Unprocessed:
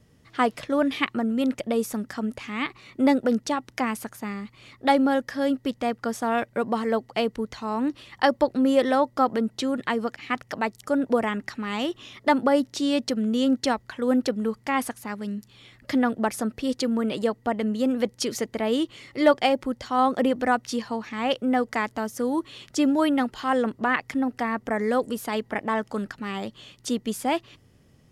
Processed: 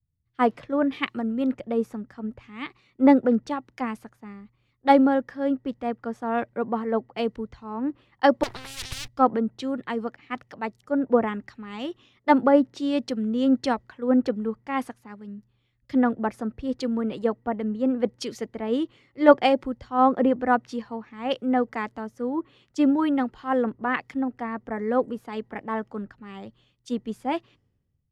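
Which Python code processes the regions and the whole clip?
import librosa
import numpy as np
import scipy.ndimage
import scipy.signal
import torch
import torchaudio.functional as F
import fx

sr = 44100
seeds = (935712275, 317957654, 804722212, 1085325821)

y = fx.chain(x, sr, fx.lower_of_two(delay_ms=0.57),
    fx.spectral_comp(ratio=10.0), at=(8.43, 9.08))
y = fx.lowpass(y, sr, hz=1400.0, slope=6)
y = fx.notch(y, sr, hz=630.0, q=12.0)
y = fx.band_widen(y, sr, depth_pct=100)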